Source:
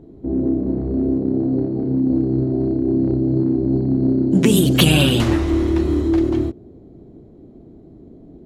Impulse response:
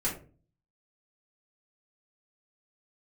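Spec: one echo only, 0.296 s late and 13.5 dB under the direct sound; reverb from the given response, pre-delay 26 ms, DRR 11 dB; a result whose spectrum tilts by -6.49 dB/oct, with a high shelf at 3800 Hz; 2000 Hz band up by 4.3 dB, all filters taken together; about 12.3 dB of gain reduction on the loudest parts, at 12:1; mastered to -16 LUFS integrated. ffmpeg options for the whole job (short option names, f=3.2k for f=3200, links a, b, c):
-filter_complex "[0:a]equalizer=f=2k:t=o:g=7.5,highshelf=f=3.8k:g=-3,acompressor=threshold=-21dB:ratio=12,aecho=1:1:296:0.211,asplit=2[a][b];[1:a]atrim=start_sample=2205,adelay=26[c];[b][c]afir=irnorm=-1:irlink=0,volume=-17dB[d];[a][d]amix=inputs=2:normalize=0,volume=9dB"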